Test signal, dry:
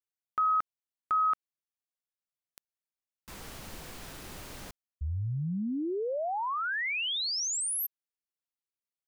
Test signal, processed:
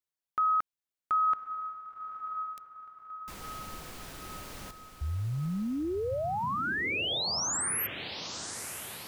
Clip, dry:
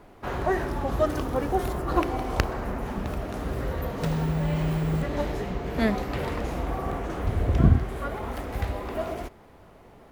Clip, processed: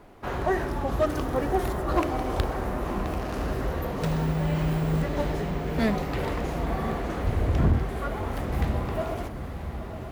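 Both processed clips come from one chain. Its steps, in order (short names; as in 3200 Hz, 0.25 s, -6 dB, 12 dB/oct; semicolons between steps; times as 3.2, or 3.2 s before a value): diffused feedback echo 1.017 s, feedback 51%, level -9 dB; hard clip -16 dBFS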